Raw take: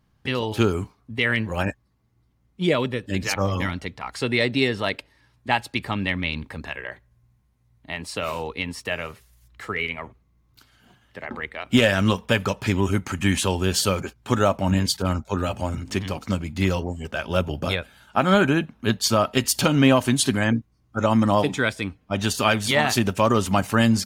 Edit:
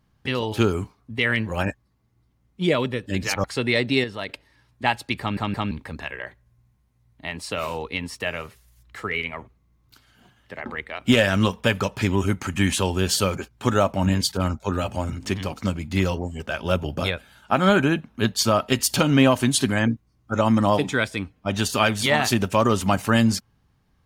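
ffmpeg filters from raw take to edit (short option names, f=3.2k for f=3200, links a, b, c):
-filter_complex "[0:a]asplit=7[a][b][c][d][e][f][g];[a]atrim=end=3.442[h];[b]atrim=start=4.088:end=4.692[i];[c]atrim=start=4.688:end=4.942,asetpts=PTS-STARTPTS,volume=-6.5dB[j];[d]atrim=start=4.938:end=6.022[k];[e]atrim=start=5.848:end=6.022[l];[f]atrim=start=5.848:end=6.022[m];[g]atrim=start=6.358[n];[h][i]acrossfade=d=0.004:c1=hsin:c2=hsin[o];[o][j]acrossfade=d=0.004:c1=hsin:c2=hsin[p];[p][k]acrossfade=d=0.004:c1=hsin:c2=hsin[q];[q][l]acrossfade=d=0.004:c1=hsin:c2=hsin[r];[r][m]acrossfade=d=0.004:c1=hsin:c2=hsin[s];[s][n]acrossfade=d=0.004:c1=hsin:c2=hsin"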